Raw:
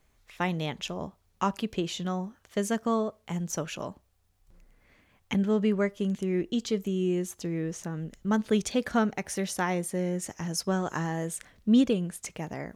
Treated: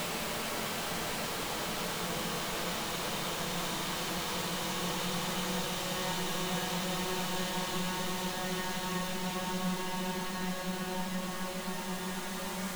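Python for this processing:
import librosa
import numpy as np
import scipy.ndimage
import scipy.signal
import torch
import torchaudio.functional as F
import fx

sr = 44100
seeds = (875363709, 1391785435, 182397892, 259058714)

y = (np.mod(10.0 ** (27.0 / 20.0) * x + 1.0, 2.0) - 1.0) / 10.0 ** (27.0 / 20.0)
y = fx.paulstretch(y, sr, seeds[0], factor=15.0, window_s=1.0, from_s=1.57)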